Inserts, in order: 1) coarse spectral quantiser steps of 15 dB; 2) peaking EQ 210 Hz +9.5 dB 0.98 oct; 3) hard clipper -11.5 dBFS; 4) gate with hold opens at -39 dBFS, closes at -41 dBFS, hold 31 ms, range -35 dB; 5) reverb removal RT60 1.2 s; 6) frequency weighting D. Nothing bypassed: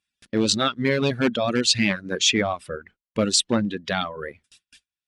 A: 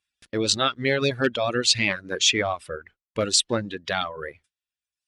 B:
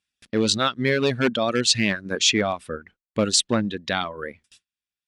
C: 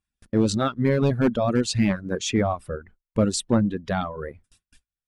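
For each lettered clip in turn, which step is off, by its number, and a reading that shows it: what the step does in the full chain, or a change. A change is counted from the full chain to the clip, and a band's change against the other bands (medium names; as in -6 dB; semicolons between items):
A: 2, 250 Hz band -6.0 dB; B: 1, 250 Hz band -1.5 dB; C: 6, 4 kHz band -10.5 dB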